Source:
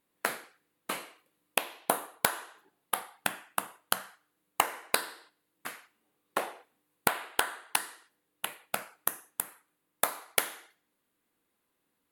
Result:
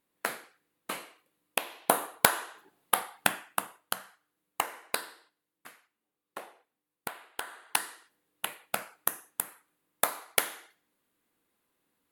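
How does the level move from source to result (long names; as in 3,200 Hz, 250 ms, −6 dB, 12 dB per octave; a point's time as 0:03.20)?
0:01.58 −1.5 dB
0:02.02 +5 dB
0:03.27 +5 dB
0:03.94 −4 dB
0:05.02 −4 dB
0:05.76 −11 dB
0:07.34 −11 dB
0:07.77 +1 dB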